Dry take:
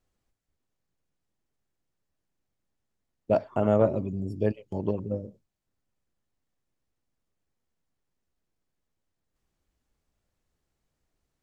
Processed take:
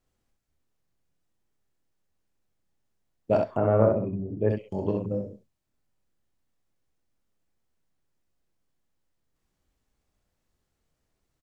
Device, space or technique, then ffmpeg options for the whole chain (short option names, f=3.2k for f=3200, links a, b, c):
slapback doubling: -filter_complex "[0:a]asplit=3[a][b][c];[b]adelay=26,volume=-7dB[d];[c]adelay=65,volume=-4dB[e];[a][d][e]amix=inputs=3:normalize=0,asplit=3[f][g][h];[f]afade=t=out:st=3.56:d=0.02[i];[g]lowpass=f=2.1k:w=0.5412,lowpass=f=2.1k:w=1.3066,afade=t=in:st=3.56:d=0.02,afade=t=out:st=4.49:d=0.02[j];[h]afade=t=in:st=4.49:d=0.02[k];[i][j][k]amix=inputs=3:normalize=0"